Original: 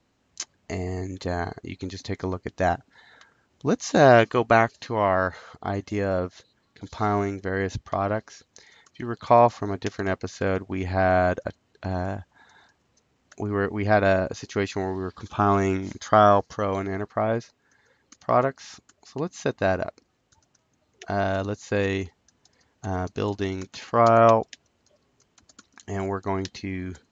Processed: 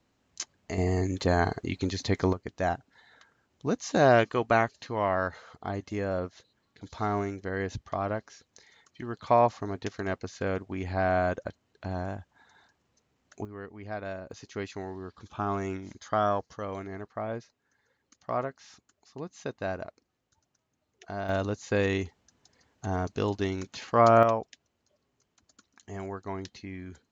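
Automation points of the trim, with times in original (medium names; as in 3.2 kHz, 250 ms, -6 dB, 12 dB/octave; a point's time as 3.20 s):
-3 dB
from 0.78 s +3.5 dB
from 2.33 s -5.5 dB
from 13.45 s -17 dB
from 14.31 s -10 dB
from 21.29 s -2 dB
from 24.23 s -9 dB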